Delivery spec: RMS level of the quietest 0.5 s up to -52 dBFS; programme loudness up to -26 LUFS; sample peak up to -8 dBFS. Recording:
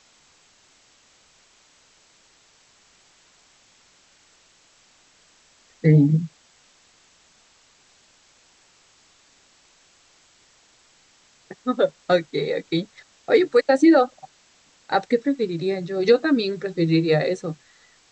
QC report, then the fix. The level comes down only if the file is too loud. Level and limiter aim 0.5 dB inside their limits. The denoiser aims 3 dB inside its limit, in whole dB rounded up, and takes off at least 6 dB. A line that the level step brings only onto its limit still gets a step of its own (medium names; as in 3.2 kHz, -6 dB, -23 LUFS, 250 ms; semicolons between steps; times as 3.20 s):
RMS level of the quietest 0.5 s -58 dBFS: pass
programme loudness -21.0 LUFS: fail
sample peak -5.0 dBFS: fail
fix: trim -5.5 dB